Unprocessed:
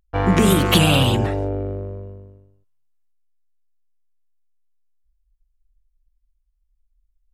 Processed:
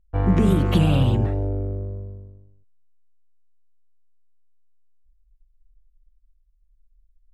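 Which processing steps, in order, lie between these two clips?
tilt -3 dB/oct; gain -9 dB

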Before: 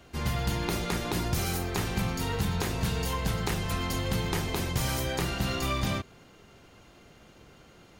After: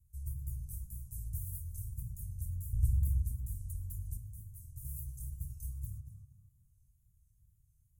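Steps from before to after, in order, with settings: 2.73–3.22 low shelf 400 Hz +11.5 dB; inverse Chebyshev band-stop 260–4200 Hz, stop band 50 dB; wow and flutter 110 cents; 4.17–4.85 resonator 110 Hz, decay 0.21 s, harmonics all, mix 80%; tape echo 0.237 s, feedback 51%, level -4 dB, low-pass 2700 Hz; gain -6.5 dB

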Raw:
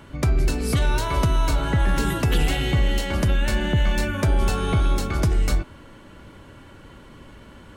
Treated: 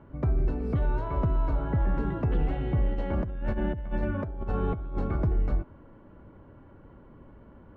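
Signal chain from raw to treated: LPF 1000 Hz 12 dB/oct; 2.9–5.16 negative-ratio compressor -22 dBFS, ratio -0.5; gain -5.5 dB

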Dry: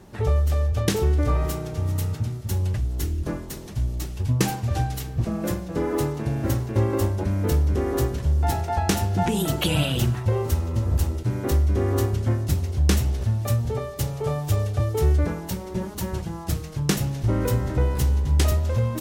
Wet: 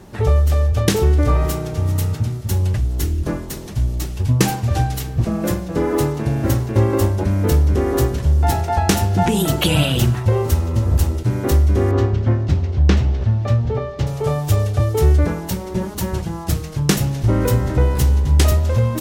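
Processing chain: 11.91–14.07 air absorption 180 m; gain +6 dB

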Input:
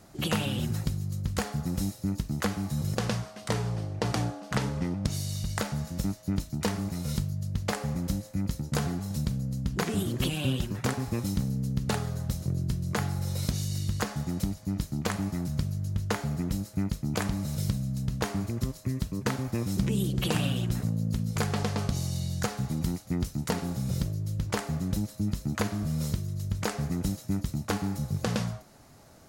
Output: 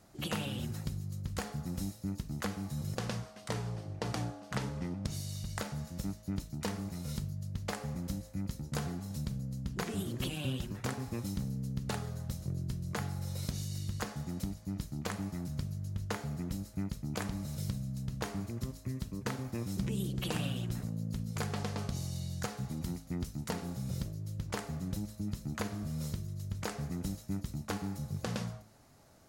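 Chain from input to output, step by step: de-hum 53.6 Hz, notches 9; gain -7 dB

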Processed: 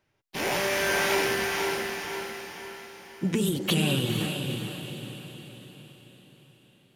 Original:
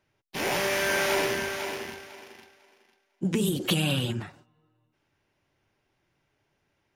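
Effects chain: diffused feedback echo 0.472 s, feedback 49%, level -5 dB

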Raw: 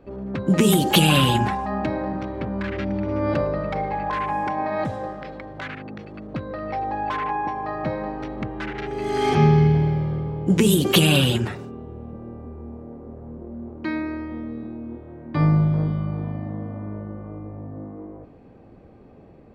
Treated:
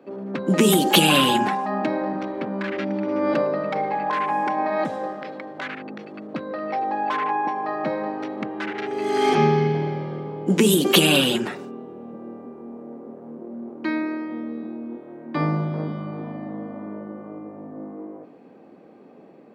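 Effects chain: HPF 200 Hz 24 dB/oct; gain +2 dB

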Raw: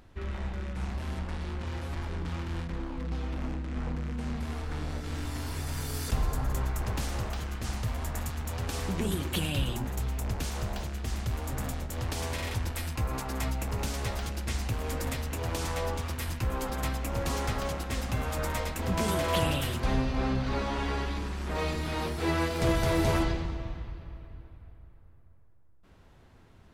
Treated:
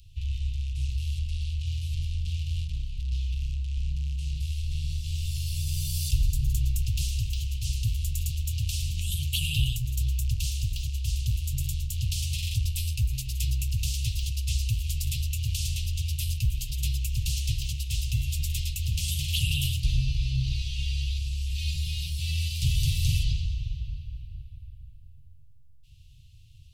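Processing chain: in parallel at -11 dB: soft clip -28.5 dBFS, distortion -11 dB; on the sum: Chebyshev band-stop 140–2700 Hz, order 5; gain +4.5 dB

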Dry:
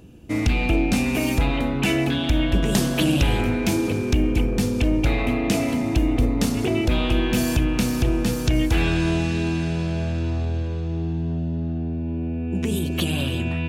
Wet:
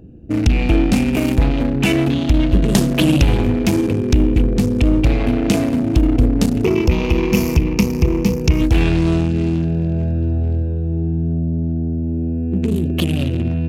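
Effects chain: Wiener smoothing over 41 samples; 6.64–8.61 ripple EQ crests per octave 0.8, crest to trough 11 dB; gain +6.5 dB

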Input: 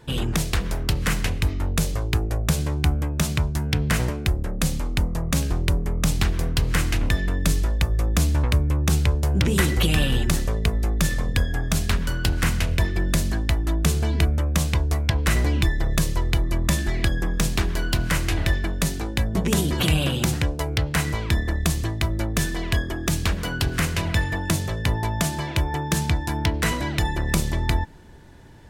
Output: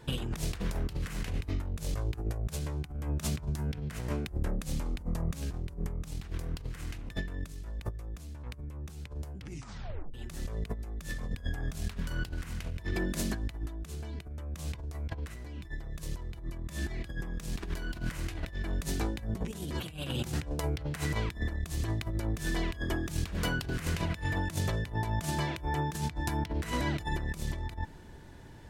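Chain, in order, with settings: 12.93–13.34 resonant low shelf 160 Hz -8 dB, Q 1.5; negative-ratio compressor -26 dBFS, ratio -0.5; 9.38 tape stop 0.76 s; gain -7.5 dB

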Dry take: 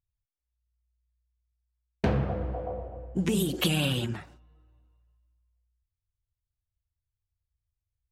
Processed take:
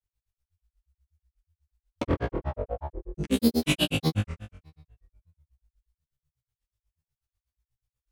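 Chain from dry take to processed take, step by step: flutter echo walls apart 3 m, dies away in 0.96 s; grains, grains 8.2/s, spray 34 ms, pitch spread up and down by 7 st

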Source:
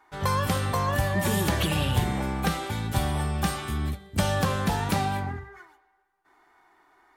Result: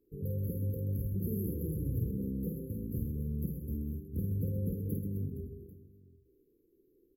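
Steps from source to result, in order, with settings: compressor 2:1, threshold -40 dBFS, peak gain reduction 12 dB; brick-wall FIR band-stop 530–11000 Hz; on a send: reverse bouncing-ball echo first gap 50 ms, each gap 1.6×, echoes 5

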